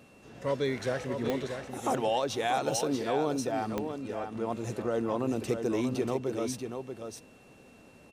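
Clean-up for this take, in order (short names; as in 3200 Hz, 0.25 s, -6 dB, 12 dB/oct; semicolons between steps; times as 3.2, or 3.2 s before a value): de-click; notch 2700 Hz, Q 30; inverse comb 0.636 s -7 dB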